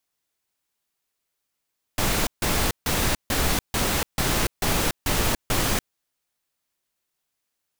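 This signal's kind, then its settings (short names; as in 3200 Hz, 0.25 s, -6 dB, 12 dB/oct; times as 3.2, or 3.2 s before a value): noise bursts pink, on 0.29 s, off 0.15 s, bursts 9, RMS -22.5 dBFS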